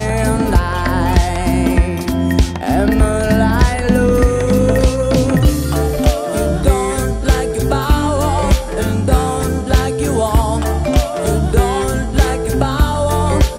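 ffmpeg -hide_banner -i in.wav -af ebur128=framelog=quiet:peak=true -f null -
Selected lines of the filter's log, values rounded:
Integrated loudness:
  I:         -15.3 LUFS
  Threshold: -25.3 LUFS
Loudness range:
  LRA:         2.1 LU
  Threshold: -35.2 LUFS
  LRA low:   -16.1 LUFS
  LRA high:  -13.9 LUFS
True peak:
  Peak:       -1.8 dBFS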